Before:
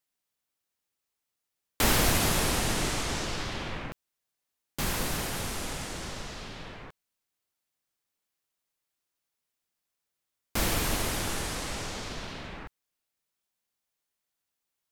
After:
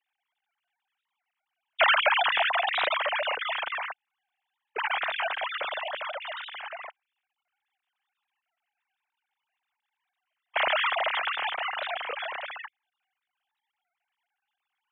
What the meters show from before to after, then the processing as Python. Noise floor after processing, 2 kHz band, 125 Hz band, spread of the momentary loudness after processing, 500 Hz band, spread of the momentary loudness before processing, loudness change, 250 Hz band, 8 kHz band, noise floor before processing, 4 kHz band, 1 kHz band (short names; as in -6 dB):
under -85 dBFS, +8.0 dB, under -35 dB, 16 LU, +3.5 dB, 17 LU, +2.5 dB, under -25 dB, under -40 dB, -85 dBFS, +3.5 dB, +7.5 dB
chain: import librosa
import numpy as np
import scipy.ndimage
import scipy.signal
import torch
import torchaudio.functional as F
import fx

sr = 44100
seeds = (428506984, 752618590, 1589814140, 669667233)

y = fx.sine_speech(x, sr)
y = fx.record_warp(y, sr, rpm=33.33, depth_cents=160.0)
y = y * 10.0 ** (1.5 / 20.0)